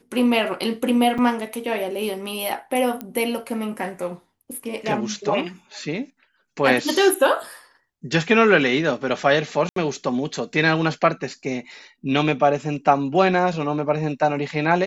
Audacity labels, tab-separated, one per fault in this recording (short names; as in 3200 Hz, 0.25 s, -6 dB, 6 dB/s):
1.180000	1.190000	gap 5.8 ms
3.010000	3.010000	pop -15 dBFS
9.690000	9.760000	gap 73 ms